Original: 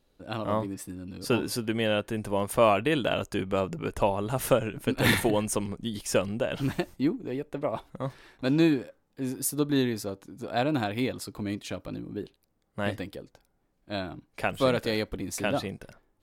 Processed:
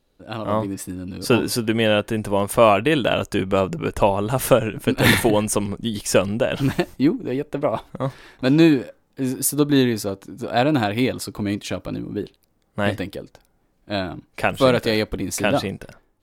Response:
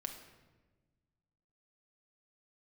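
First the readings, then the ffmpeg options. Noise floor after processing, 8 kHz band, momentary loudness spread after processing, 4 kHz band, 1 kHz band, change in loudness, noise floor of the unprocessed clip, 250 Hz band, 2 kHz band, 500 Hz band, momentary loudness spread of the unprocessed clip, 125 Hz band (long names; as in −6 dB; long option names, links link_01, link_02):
−64 dBFS, +8.0 dB, 14 LU, +8.0 dB, +7.5 dB, +8.0 dB, −72 dBFS, +8.0 dB, +8.0 dB, +8.0 dB, 14 LU, +8.0 dB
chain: -af "dynaudnorm=framelen=210:gausssize=5:maxgain=6.5dB,volume=2dB"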